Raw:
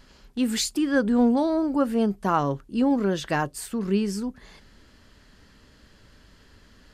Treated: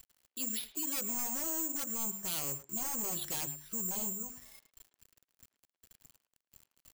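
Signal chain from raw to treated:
mains-hum notches 50/100/150/200/250/300/350 Hz
noise reduction from a noise print of the clip's start 12 dB
0:02.69–0:04.13: spectral tilt −1.5 dB per octave
wave folding −22 dBFS
downward compressor 2 to 1, threshold −37 dBFS, peak gain reduction 7 dB
brickwall limiter −31 dBFS, peak gain reduction 6.5 dB
high shelf with overshoot 2,300 Hz +6.5 dB, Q 1.5
bit reduction 9 bits
bad sample-rate conversion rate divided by 6×, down filtered, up zero stuff
far-end echo of a speakerphone 110 ms, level −14 dB
level −7.5 dB

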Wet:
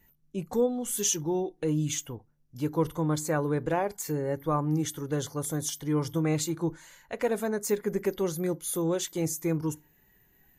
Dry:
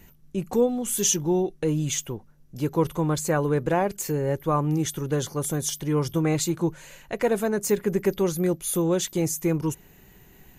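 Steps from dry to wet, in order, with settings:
feedback delay network reverb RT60 0.31 s, low-frequency decay 1.55×, high-frequency decay 0.6×, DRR 18 dB
noise reduction from a noise print of the clip's start 10 dB
level −4.5 dB

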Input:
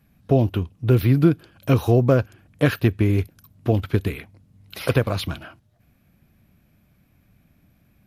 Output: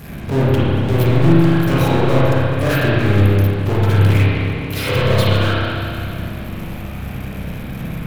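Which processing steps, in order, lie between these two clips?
power curve on the samples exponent 0.35
spring reverb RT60 2.7 s, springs 30/42 ms, chirp 35 ms, DRR −8.5 dB
level −11 dB

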